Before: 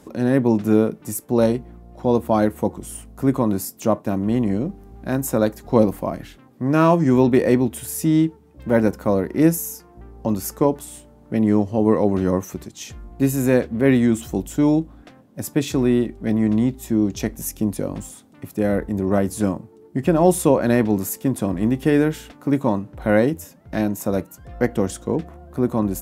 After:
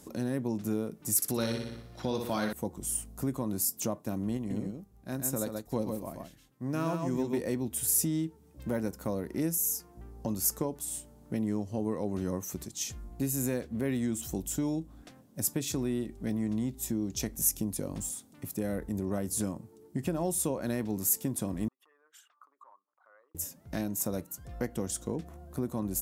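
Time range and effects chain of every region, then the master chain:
0:01.16–0:02.53: flat-topped bell 2,600 Hz +11.5 dB 2.4 octaves + flutter between parallel walls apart 10.4 metres, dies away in 0.6 s
0:04.37–0:07.41: single-tap delay 131 ms −4 dB + expander for the loud parts, over −35 dBFS
0:21.68–0:23.35: spectral envelope exaggerated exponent 2 + downward compressor 3 to 1, threshold −25 dBFS + four-pole ladder high-pass 1,100 Hz, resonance 80%
whole clip: downward compressor 2.5 to 1, threshold −24 dBFS; bass and treble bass +3 dB, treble +12 dB; level −8.5 dB

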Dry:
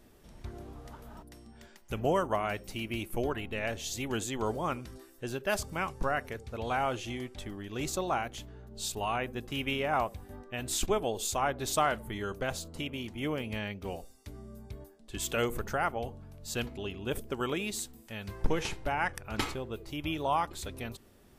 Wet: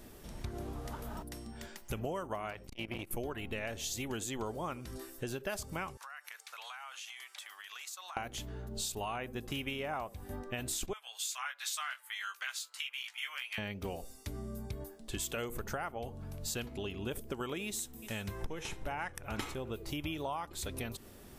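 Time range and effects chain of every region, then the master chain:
0:02.50–0:03.11: low-pass filter 2,900 Hz 6 dB per octave + dynamic equaliser 330 Hz, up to −4 dB, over −45 dBFS, Q 0.85 + saturating transformer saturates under 850 Hz
0:05.97–0:08.17: high-pass filter 1,100 Hz 24 dB per octave + downward compressor 12 to 1, threshold −49 dBFS
0:10.93–0:13.58: high-pass filter 1,400 Hz 24 dB per octave + high-shelf EQ 7,000 Hz −8 dB + double-tracking delay 16 ms −5.5 dB
0:17.65–0:19.71: notch filter 4,600 Hz, Q 8.5 + single-tap delay 372 ms −22 dB
whole clip: high-shelf EQ 7,200 Hz +5 dB; downward compressor 6 to 1, threshold −42 dBFS; level +6 dB

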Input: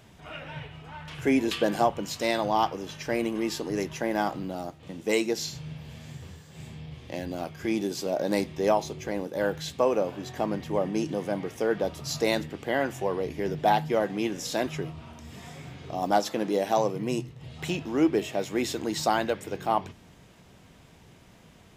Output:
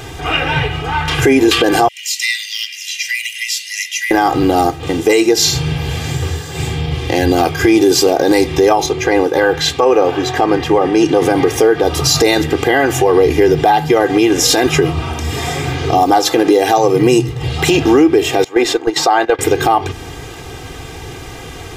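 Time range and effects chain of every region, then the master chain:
0:01.88–0:04.11: Chebyshev high-pass with heavy ripple 1,900 Hz, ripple 3 dB + downward compressor 2.5 to 1, threshold −43 dBFS
0:08.86–0:11.22: low-pass filter 3,200 Hz 6 dB per octave + low-shelf EQ 450 Hz −7 dB
0:18.44–0:19.39: high-pass filter 680 Hz + noise gate −37 dBFS, range −13 dB + spectral tilt −4 dB per octave
whole clip: comb filter 2.5 ms, depth 86%; downward compressor 3 to 1, threshold −28 dBFS; boost into a limiter +24 dB; level −1 dB

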